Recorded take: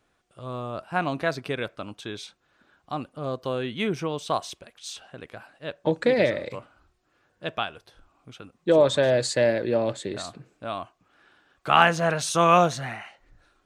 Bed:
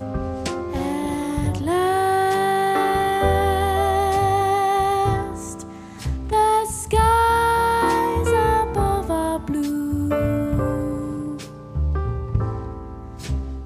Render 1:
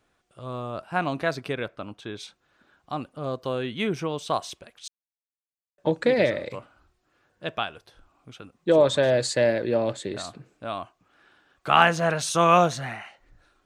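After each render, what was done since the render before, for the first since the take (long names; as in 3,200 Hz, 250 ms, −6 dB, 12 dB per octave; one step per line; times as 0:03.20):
0:01.52–0:02.19: high-shelf EQ 5,400 Hz → 3,700 Hz −10 dB
0:04.88–0:05.78: silence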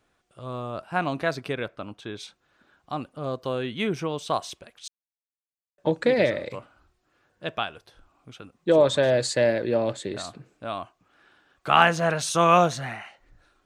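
no processing that can be heard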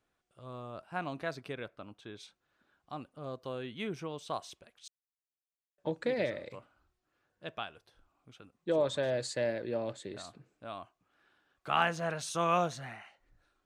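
level −11 dB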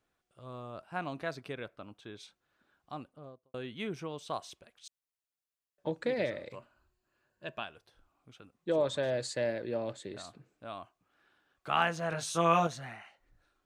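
0:02.94–0:03.54: fade out and dull
0:06.56–0:07.64: EQ curve with evenly spaced ripples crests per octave 1.4, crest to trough 7 dB
0:12.10–0:12.67: double-tracking delay 18 ms −2.5 dB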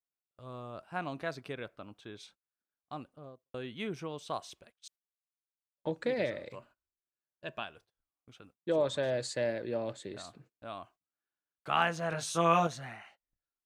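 noise gate −59 dBFS, range −27 dB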